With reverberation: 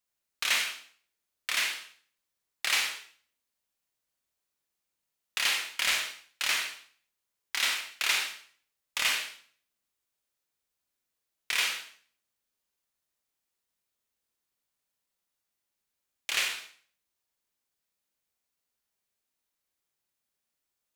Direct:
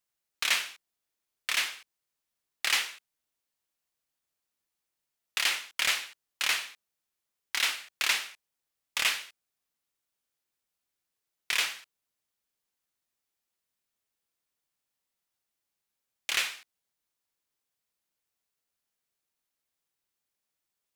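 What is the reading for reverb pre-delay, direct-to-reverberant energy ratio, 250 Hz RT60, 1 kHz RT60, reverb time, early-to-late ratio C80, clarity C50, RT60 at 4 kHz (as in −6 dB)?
31 ms, 2.5 dB, 0.60 s, 0.45 s, 0.45 s, 9.0 dB, 5.5 dB, 0.45 s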